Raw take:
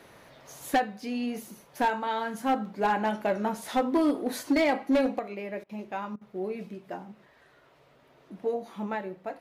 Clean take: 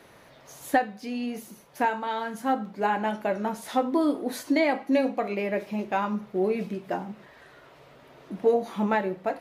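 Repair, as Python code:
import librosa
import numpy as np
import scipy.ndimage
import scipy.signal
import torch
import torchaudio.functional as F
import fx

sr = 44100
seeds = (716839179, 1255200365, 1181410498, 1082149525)

y = fx.fix_declip(x, sr, threshold_db=-18.5)
y = fx.fix_interpolate(y, sr, at_s=(5.64, 6.16), length_ms=51.0)
y = fx.fix_level(y, sr, at_s=5.19, step_db=8.0)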